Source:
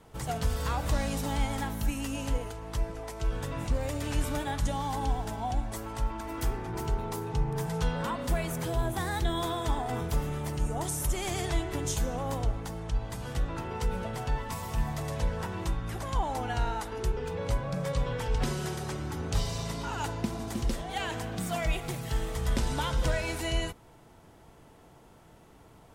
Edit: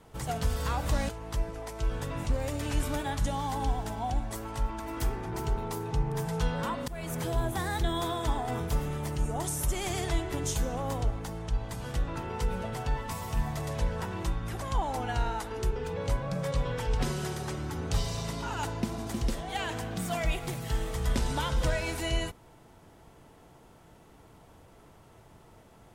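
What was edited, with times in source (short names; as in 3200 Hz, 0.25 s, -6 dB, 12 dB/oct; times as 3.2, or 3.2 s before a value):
1.09–2.5 cut
8.29–8.56 fade in, from -22 dB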